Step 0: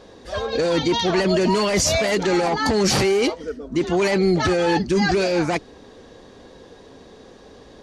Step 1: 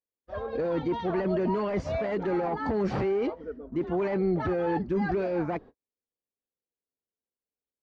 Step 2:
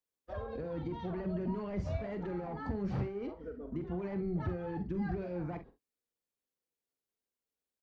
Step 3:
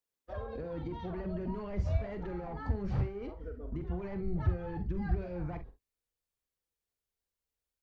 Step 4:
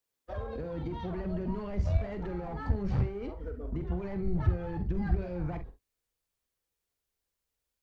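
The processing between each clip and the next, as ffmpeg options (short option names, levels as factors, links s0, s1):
-af "lowpass=1400,agate=range=0.00355:threshold=0.0158:ratio=16:detection=peak,volume=0.398"
-filter_complex "[0:a]acrossover=split=170[s0][s1];[s1]acompressor=threshold=0.01:ratio=8[s2];[s0][s2]amix=inputs=2:normalize=0,asplit=2[s3][s4];[s4]aecho=0:1:45|66:0.335|0.126[s5];[s3][s5]amix=inputs=2:normalize=0"
-af "asubboost=boost=6.5:cutoff=88"
-filter_complex "[0:a]acrossover=split=260|3000[s0][s1][s2];[s1]acompressor=threshold=0.00891:ratio=6[s3];[s0][s3][s2]amix=inputs=3:normalize=0,asplit=2[s4][s5];[s5]aeval=exprs='clip(val(0),-1,0.01)':c=same,volume=0.668[s6];[s4][s6]amix=inputs=2:normalize=0"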